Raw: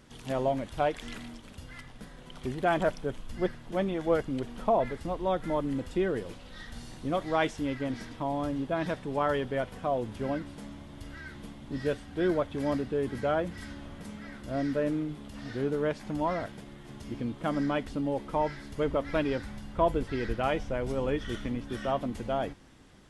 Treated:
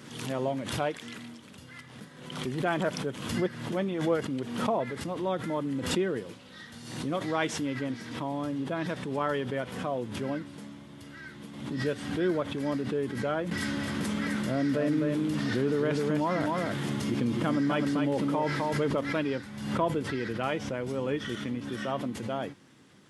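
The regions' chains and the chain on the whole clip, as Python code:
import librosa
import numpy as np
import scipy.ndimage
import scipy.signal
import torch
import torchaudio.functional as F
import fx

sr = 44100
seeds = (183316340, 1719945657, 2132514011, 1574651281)

y = fx.chain(x, sr, fx.echo_single(ms=257, db=-5.5),
    fx.env_flatten(amount_pct=70), at=(13.51, 19.01))
y = scipy.signal.sosfilt(scipy.signal.butter(4, 110.0, 'highpass', fs=sr, output='sos'), y)
y = fx.peak_eq(y, sr, hz=710.0, db=-5.0, octaves=0.65)
y = fx.pre_swell(y, sr, db_per_s=59.0)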